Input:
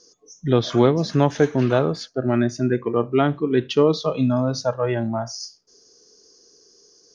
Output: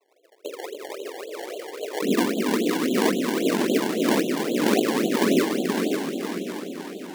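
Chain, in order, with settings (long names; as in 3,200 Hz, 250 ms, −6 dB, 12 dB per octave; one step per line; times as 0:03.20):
spectral tilt −4.5 dB per octave
convolution reverb RT60 1.0 s, pre-delay 80 ms, DRR 3.5 dB
cochlear-implant simulation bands 3
elliptic low-pass filter 720 Hz
gate on every frequency bin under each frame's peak −15 dB strong
compressor whose output falls as the input rises −25 dBFS, ratio −1
Butterworth high-pass 430 Hz 36 dB per octave, from 0:02.01 210 Hz
echo machine with several playback heads 144 ms, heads second and third, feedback 66%, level −9 dB
sample-and-hold swept by an LFO 24×, swing 100% 3.7 Hz
feedback echo with a swinging delay time 549 ms, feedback 41%, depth 185 cents, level −6 dB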